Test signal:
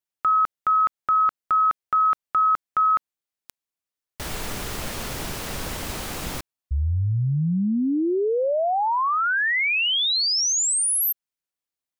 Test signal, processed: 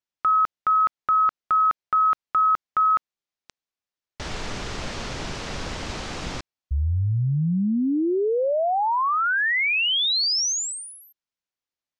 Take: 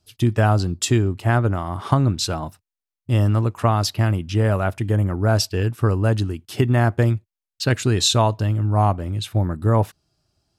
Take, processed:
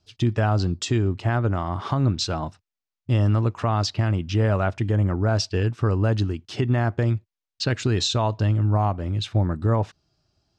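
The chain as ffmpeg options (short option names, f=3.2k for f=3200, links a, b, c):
-af "alimiter=limit=-13dB:level=0:latency=1:release=163,lowpass=f=6.5k:w=0.5412,lowpass=f=6.5k:w=1.3066"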